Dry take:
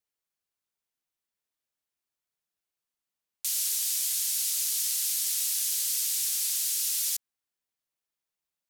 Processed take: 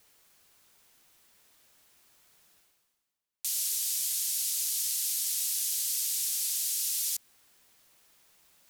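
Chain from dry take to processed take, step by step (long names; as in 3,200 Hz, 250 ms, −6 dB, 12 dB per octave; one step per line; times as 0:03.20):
dynamic equaliser 1,200 Hz, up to −4 dB, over −52 dBFS, Q 0.82
reversed playback
upward compression, threshold −39 dBFS
reversed playback
level −2 dB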